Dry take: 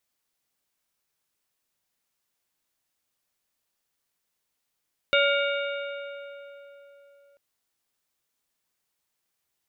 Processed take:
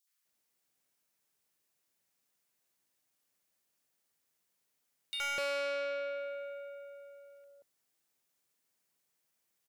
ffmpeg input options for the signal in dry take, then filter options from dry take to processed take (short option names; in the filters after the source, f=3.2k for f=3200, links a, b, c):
-f lavfi -i "aevalsrc='0.0891*pow(10,-3*t/3.73)*sin(2*PI*564*t)+0.075*pow(10,-3*t/2.834)*sin(2*PI*1410*t)+0.0631*pow(10,-3*t/2.461)*sin(2*PI*2256*t)+0.0531*pow(10,-3*t/2.302)*sin(2*PI*2820*t)+0.0447*pow(10,-3*t/2.127)*sin(2*PI*3666*t)':d=2.24:s=44100"
-filter_complex "[0:a]highpass=100,acrossover=split=1100|3500[a][b][c];[b]adelay=70[d];[a]adelay=250[e];[e][d][c]amix=inputs=3:normalize=0,asoftclip=type=tanh:threshold=-33dB"